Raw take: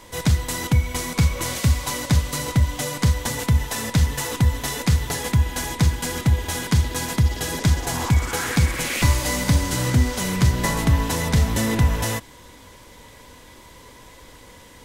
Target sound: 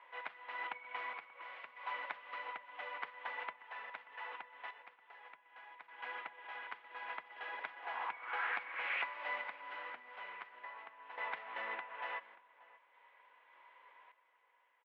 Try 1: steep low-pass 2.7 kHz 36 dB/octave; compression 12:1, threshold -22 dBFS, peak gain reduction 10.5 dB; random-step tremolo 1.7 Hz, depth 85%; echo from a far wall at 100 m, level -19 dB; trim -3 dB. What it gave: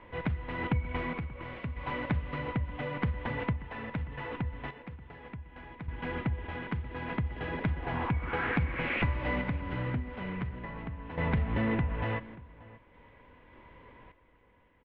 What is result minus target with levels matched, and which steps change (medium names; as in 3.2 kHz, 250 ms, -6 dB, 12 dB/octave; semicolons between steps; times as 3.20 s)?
500 Hz band +5.0 dB
add after compression: ladder high-pass 640 Hz, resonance 20%